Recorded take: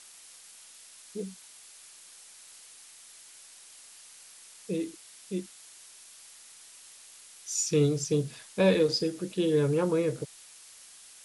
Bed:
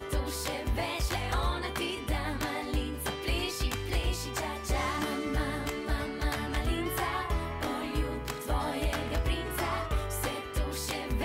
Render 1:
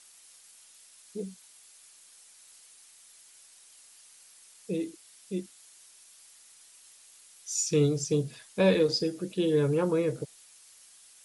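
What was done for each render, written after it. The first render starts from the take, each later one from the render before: denoiser 6 dB, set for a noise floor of -52 dBFS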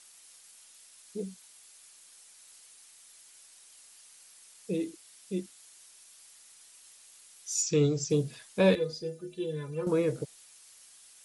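7.62–8.1 Chebyshev low-pass 7900 Hz, order 8; 8.75–9.87 metallic resonator 74 Hz, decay 0.36 s, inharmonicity 0.03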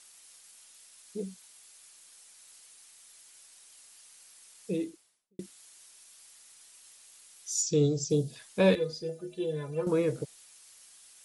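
4.7–5.39 studio fade out; 7.51–8.36 band shelf 1600 Hz -11 dB; 9.09–9.82 bell 680 Hz +10.5 dB 0.59 oct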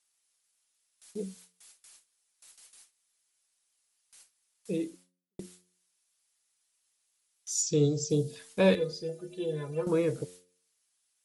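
gate with hold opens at -43 dBFS; de-hum 89.97 Hz, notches 6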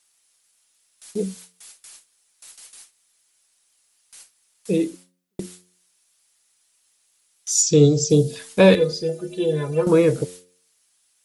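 gain +11.5 dB; limiter -3 dBFS, peak gain reduction 2 dB

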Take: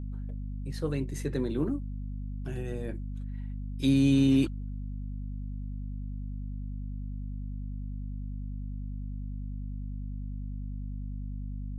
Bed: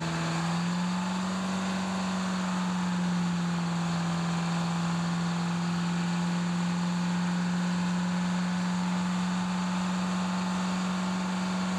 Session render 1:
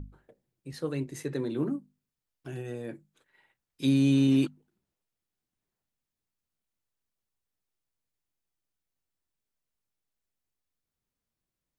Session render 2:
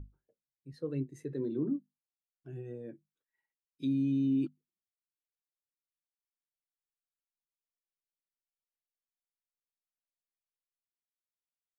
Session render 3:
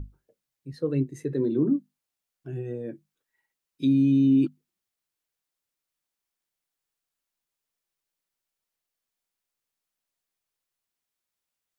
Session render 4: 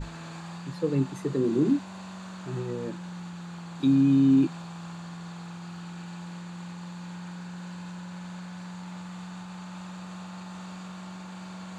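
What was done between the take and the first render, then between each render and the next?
notches 50/100/150/200/250 Hz
limiter -22.5 dBFS, peak gain reduction 8 dB; spectral expander 1.5:1
gain +9.5 dB
add bed -11 dB

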